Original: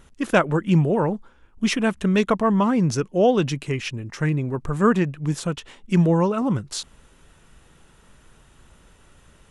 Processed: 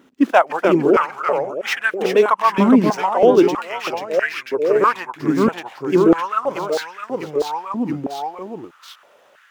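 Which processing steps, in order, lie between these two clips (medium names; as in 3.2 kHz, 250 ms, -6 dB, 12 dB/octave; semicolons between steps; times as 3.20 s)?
median filter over 5 samples; ever faster or slower copies 278 ms, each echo -1 st, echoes 3; step-sequenced high-pass 3.1 Hz 270–1600 Hz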